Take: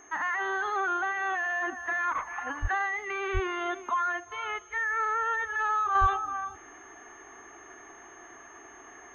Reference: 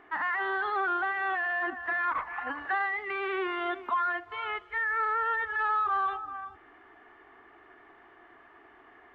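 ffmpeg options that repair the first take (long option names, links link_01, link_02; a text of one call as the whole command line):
ffmpeg -i in.wav -filter_complex "[0:a]bandreject=frequency=6400:width=30,asplit=3[link_01][link_02][link_03];[link_01]afade=type=out:start_time=2.61:duration=0.02[link_04];[link_02]highpass=frequency=140:width=0.5412,highpass=frequency=140:width=1.3066,afade=type=in:start_time=2.61:duration=0.02,afade=type=out:start_time=2.73:duration=0.02[link_05];[link_03]afade=type=in:start_time=2.73:duration=0.02[link_06];[link_04][link_05][link_06]amix=inputs=3:normalize=0,asplit=3[link_07][link_08][link_09];[link_07]afade=type=out:start_time=3.33:duration=0.02[link_10];[link_08]highpass=frequency=140:width=0.5412,highpass=frequency=140:width=1.3066,afade=type=in:start_time=3.33:duration=0.02,afade=type=out:start_time=3.45:duration=0.02[link_11];[link_09]afade=type=in:start_time=3.45:duration=0.02[link_12];[link_10][link_11][link_12]amix=inputs=3:normalize=0,asplit=3[link_13][link_14][link_15];[link_13]afade=type=out:start_time=6:duration=0.02[link_16];[link_14]highpass=frequency=140:width=0.5412,highpass=frequency=140:width=1.3066,afade=type=in:start_time=6:duration=0.02,afade=type=out:start_time=6.12:duration=0.02[link_17];[link_15]afade=type=in:start_time=6.12:duration=0.02[link_18];[link_16][link_17][link_18]amix=inputs=3:normalize=0,asetnsamples=nb_out_samples=441:pad=0,asendcmd='5.95 volume volume -5.5dB',volume=0dB" out.wav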